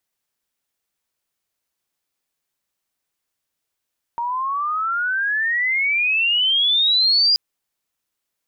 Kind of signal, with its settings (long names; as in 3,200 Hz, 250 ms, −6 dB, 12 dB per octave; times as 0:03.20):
glide logarithmic 930 Hz → 4,900 Hz −21 dBFS → −12.5 dBFS 3.18 s